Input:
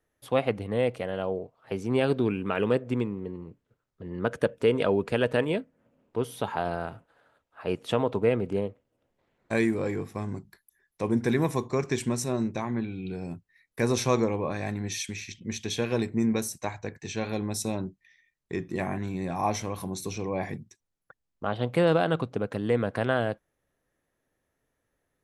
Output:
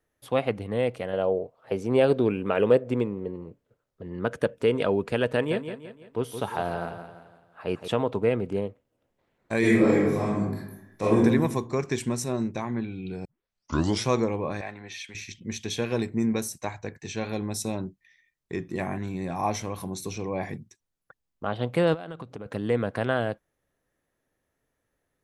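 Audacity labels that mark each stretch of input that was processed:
1.130000	4.030000	peaking EQ 540 Hz +7.5 dB 0.87 oct
5.310000	7.880000	feedback delay 169 ms, feedback 43%, level -9 dB
9.590000	11.170000	reverb throw, RT60 0.92 s, DRR -8.5 dB
13.250000	13.250000	tape start 0.81 s
14.610000	15.150000	three-band isolator lows -14 dB, under 480 Hz, highs -16 dB, over 4 kHz
21.940000	22.460000	compression 12:1, threshold -33 dBFS

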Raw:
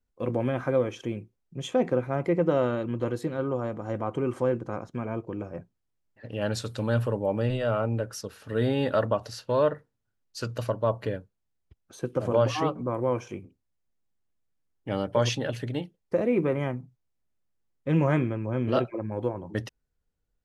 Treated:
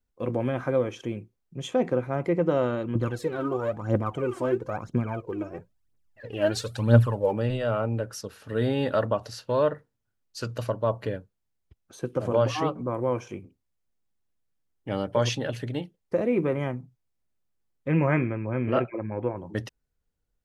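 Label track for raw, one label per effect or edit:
2.950000	7.330000	phaser 1 Hz, delay 3.3 ms, feedback 69%
17.880000	19.370000	resonant high shelf 3 kHz -9 dB, Q 3

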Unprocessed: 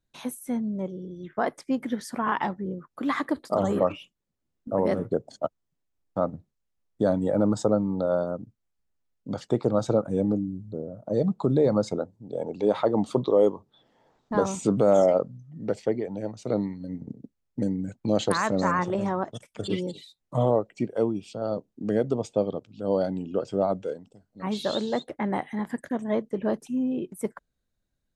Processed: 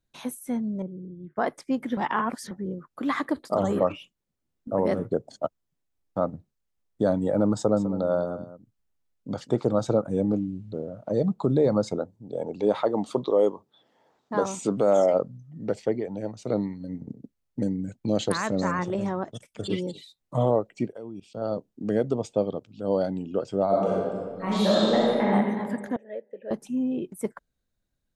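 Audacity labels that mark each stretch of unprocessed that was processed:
0.820000	1.360000	band-pass filter 150 Hz, Q 0.79
1.970000	2.510000	reverse
7.560000	9.730000	delay 202 ms -14 dB
10.330000	11.120000	peaking EQ 2.6 kHz +13 dB 2.1 oct
12.750000	15.130000	high-pass 260 Hz 6 dB/octave
17.690000	19.610000	peaking EQ 1 kHz -4.5 dB 1.5 oct
20.920000	21.370000	level held to a coarse grid steps of 19 dB
23.670000	25.290000	reverb throw, RT60 1.8 s, DRR -6 dB
25.960000	26.510000	vowel filter e

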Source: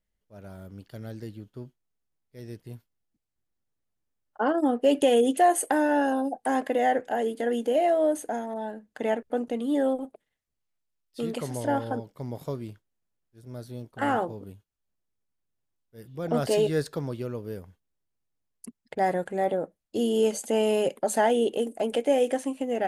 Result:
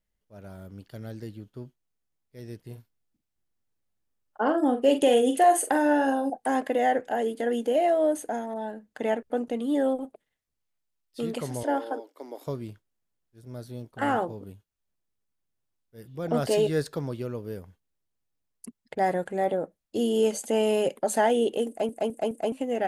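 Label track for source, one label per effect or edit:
2.620000	6.300000	doubling 44 ms -8 dB
11.630000	12.470000	elliptic high-pass 280 Hz
21.680000	21.680000	stutter in place 0.21 s, 4 plays

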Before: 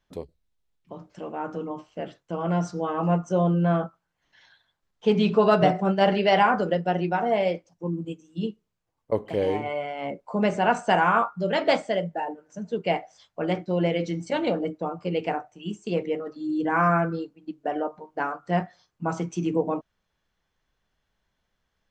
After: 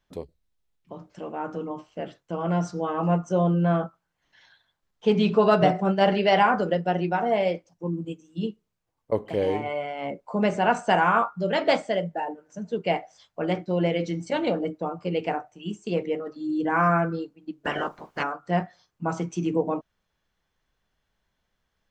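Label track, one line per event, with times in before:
17.640000	18.220000	spectral peaks clipped ceiling under each frame's peak by 25 dB

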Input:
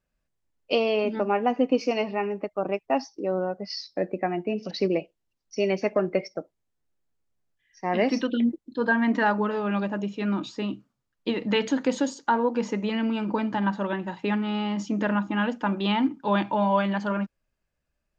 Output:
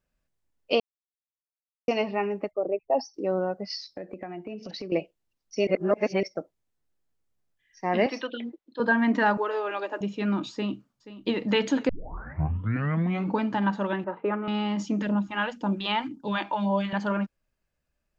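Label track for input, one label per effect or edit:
0.800000	1.880000	mute
2.510000	3.140000	resonances exaggerated exponent 2
3.760000	4.920000	compression 5:1, threshold -34 dBFS
5.670000	6.230000	reverse
8.060000	8.800000	three-band isolator lows -16 dB, under 450 Hz, highs -13 dB, over 4.9 kHz
9.370000	10.010000	steep high-pass 300 Hz 48 dB/octave
10.520000	11.350000	echo throw 480 ms, feedback 65%, level -15 dB
11.890000	11.890000	tape start 1.50 s
14.040000	14.480000	cabinet simulation 240–2000 Hz, peaks and dips at 250 Hz -8 dB, 370 Hz +5 dB, 560 Hz +8 dB, 800 Hz -3 dB, 1.3 kHz +8 dB, 1.8 kHz -8 dB
15.020000	16.930000	phase shifter stages 2, 1.9 Hz, lowest notch 120–2100 Hz

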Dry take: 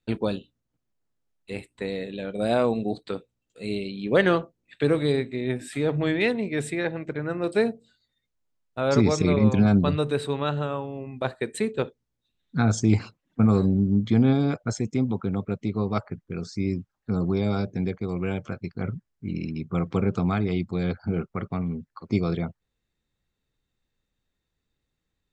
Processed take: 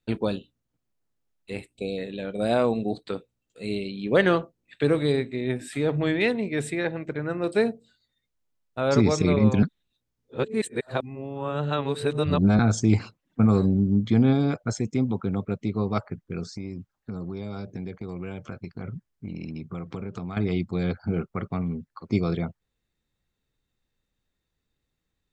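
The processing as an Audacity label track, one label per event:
1.730000	1.980000	spectral selection erased 780–2200 Hz
9.630000	12.590000	reverse
16.520000	20.370000	compression, threshold -30 dBFS

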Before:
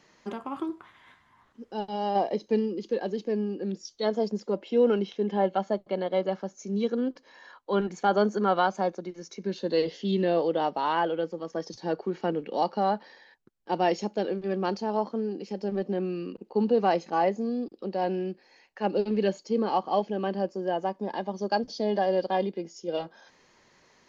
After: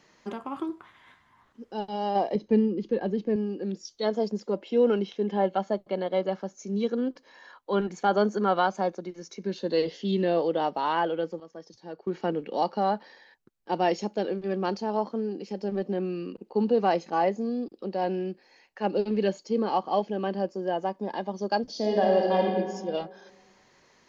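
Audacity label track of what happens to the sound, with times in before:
2.350000	3.360000	tone controls bass +9 dB, treble -12 dB
11.400000	12.070000	gain -11 dB
21.690000	22.530000	reverb throw, RT60 1.6 s, DRR 0 dB

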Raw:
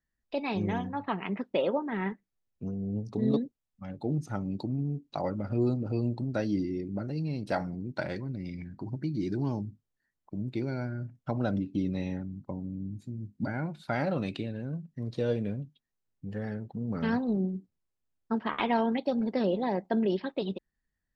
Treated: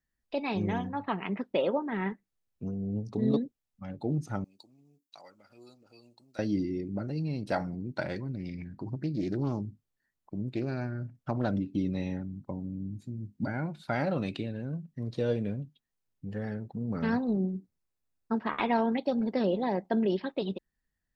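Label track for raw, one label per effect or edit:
4.440000	6.390000	differentiator
8.380000	11.480000	loudspeaker Doppler distortion depth 0.24 ms
16.600000	18.980000	band-stop 3.1 kHz, Q 8.9

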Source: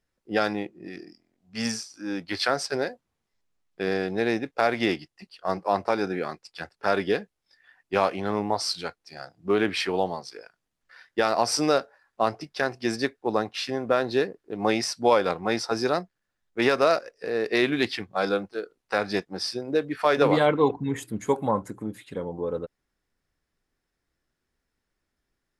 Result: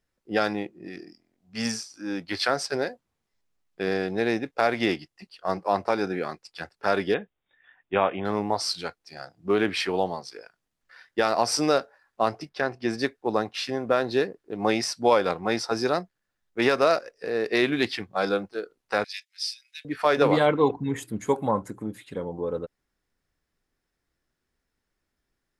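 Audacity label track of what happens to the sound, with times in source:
7.140000	8.250000	brick-wall FIR low-pass 3.8 kHz
12.490000	12.980000	treble shelf 4.6 kHz -11 dB
19.040000	19.850000	steep high-pass 2.2 kHz

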